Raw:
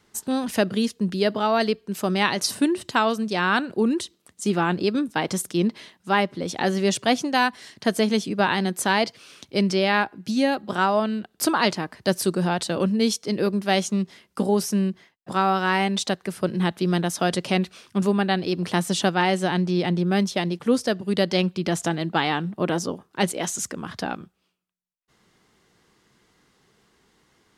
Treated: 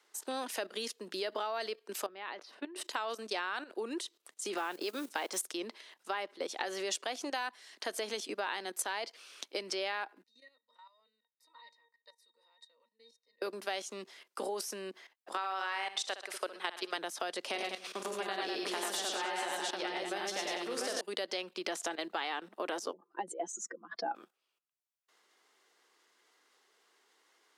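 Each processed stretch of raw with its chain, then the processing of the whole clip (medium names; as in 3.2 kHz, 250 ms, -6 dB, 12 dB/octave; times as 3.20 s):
2.06–2.76 s: distance through air 320 m + level held to a coarse grid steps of 18 dB
4.57–5.47 s: bass shelf 62 Hz -10.5 dB + upward compressor, threshold -26 dBFS + modulation noise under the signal 26 dB
10.23–13.42 s: differentiator + pitch-class resonator A#, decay 0.12 s
15.37–16.98 s: frequency weighting A + flutter echo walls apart 10.8 m, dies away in 0.42 s
17.49–21.01 s: compression 10:1, threshold -22 dBFS + multi-tap echo 46/94/114/200/291/693 ms -8/-4/-3/-5/-15/-4 dB
22.93–24.15 s: spectral contrast enhancement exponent 2.2 + low-pass 1.7 kHz 6 dB/octave + comb 5.9 ms, depth 71%
whole clip: level held to a coarse grid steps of 14 dB; Bessel high-pass 530 Hz, order 6; compression 5:1, threshold -35 dBFS; trim +2 dB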